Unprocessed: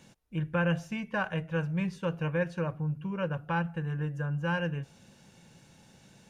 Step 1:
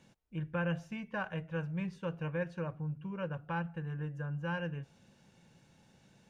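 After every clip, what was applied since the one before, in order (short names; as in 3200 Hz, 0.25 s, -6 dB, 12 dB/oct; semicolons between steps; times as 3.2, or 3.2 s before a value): high shelf 5600 Hz -7 dB; gain -6 dB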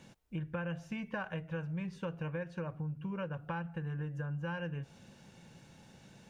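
compressor, threshold -42 dBFS, peak gain reduction 12 dB; gain +6.5 dB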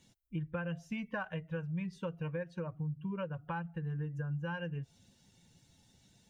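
per-bin expansion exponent 1.5; gain +2.5 dB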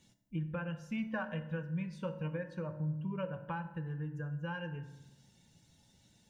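reverb RT60 0.95 s, pre-delay 3 ms, DRR 7.5 dB; gain -1 dB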